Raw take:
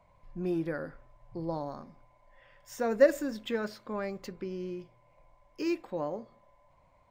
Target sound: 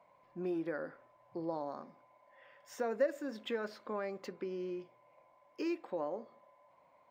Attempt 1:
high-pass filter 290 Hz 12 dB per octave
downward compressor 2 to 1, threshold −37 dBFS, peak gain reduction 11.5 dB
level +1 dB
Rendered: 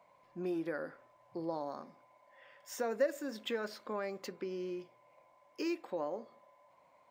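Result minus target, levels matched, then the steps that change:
8,000 Hz band +7.0 dB
add after downward compressor: high-shelf EQ 4,500 Hz −10.5 dB

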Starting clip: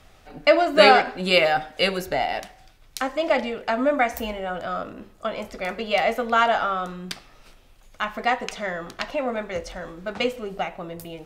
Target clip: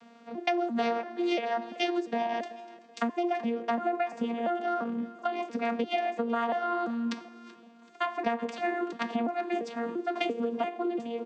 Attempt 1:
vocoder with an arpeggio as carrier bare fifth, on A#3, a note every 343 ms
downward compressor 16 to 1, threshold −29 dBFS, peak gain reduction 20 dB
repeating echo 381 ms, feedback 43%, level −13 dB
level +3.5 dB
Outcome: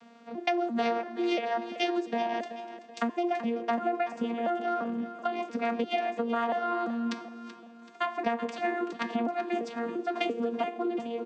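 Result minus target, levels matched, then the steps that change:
echo-to-direct +6.5 dB
change: repeating echo 381 ms, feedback 43%, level −19.5 dB

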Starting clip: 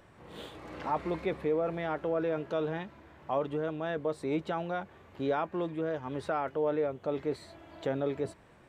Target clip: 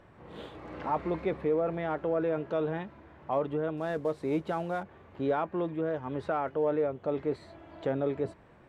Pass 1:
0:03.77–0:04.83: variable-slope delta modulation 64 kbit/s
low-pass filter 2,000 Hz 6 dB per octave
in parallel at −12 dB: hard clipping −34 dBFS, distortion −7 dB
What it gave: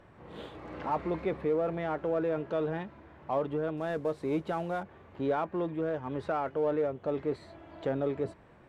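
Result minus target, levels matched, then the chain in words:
hard clipping: distortion +16 dB
0:03.77–0:04.83: variable-slope delta modulation 64 kbit/s
low-pass filter 2,000 Hz 6 dB per octave
in parallel at −12 dB: hard clipping −24 dBFS, distortion −23 dB

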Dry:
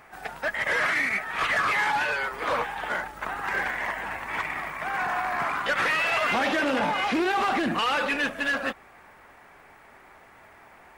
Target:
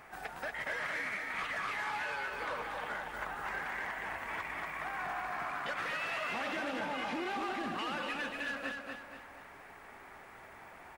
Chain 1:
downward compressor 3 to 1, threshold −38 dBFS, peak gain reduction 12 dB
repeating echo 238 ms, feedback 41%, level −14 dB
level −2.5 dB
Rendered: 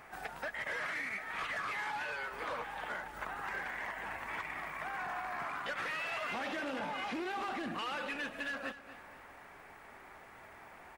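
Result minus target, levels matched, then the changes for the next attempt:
echo-to-direct −10 dB
change: repeating echo 238 ms, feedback 41%, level −4 dB

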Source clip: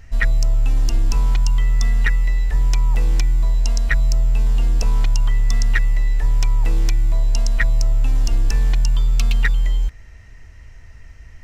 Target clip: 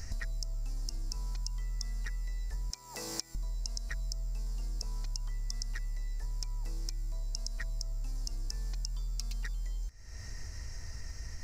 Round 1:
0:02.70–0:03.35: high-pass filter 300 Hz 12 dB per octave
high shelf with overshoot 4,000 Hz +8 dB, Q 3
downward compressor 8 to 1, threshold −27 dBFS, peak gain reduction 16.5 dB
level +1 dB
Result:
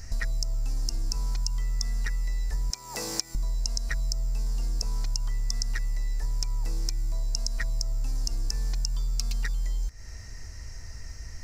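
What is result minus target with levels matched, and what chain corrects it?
downward compressor: peak gain reduction −8.5 dB
0:02.70–0:03.35: high-pass filter 300 Hz 12 dB per octave
high shelf with overshoot 4,000 Hz +8 dB, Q 3
downward compressor 8 to 1, threshold −36.5 dBFS, peak gain reduction 25 dB
level +1 dB

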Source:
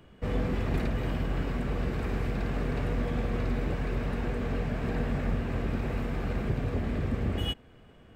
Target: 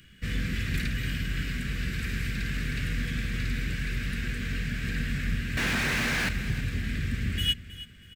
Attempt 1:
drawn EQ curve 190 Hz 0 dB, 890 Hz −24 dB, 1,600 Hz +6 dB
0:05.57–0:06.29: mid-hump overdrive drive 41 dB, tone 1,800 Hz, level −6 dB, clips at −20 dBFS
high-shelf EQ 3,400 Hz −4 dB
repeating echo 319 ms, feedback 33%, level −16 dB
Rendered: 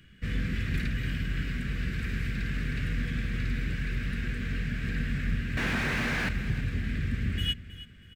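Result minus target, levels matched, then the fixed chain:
8,000 Hz band −7.5 dB
drawn EQ curve 190 Hz 0 dB, 890 Hz −24 dB, 1,600 Hz +6 dB
0:05.57–0:06.29: mid-hump overdrive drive 41 dB, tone 1,800 Hz, level −6 dB, clips at −20 dBFS
high-shelf EQ 3,400 Hz +6.5 dB
repeating echo 319 ms, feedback 33%, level −16 dB

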